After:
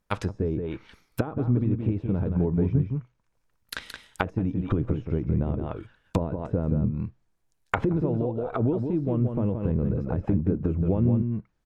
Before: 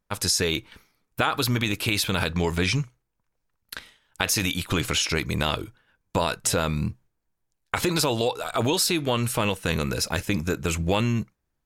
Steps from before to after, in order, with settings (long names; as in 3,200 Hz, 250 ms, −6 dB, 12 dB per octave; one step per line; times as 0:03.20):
dynamic equaliser 4,400 Hz, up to −7 dB, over −44 dBFS, Q 3.6
single-tap delay 173 ms −6 dB
treble cut that deepens with the level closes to 360 Hz, closed at −22 dBFS
level +2.5 dB